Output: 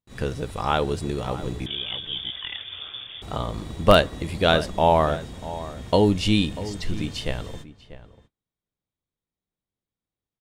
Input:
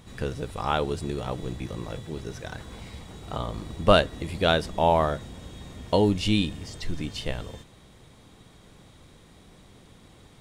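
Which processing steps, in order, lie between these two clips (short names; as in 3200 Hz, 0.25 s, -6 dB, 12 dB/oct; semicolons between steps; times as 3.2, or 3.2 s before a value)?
in parallel at -8 dB: wrapped overs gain 5 dB; on the sum: crackle 32/s -49 dBFS; gate -40 dBFS, range -43 dB; 1.66–3.22 inverted band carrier 3500 Hz; outdoor echo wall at 110 m, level -15 dB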